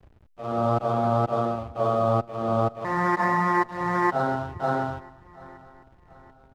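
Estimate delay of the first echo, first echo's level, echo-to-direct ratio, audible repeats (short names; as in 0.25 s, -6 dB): 0.734 s, -21.5 dB, -20.5 dB, 3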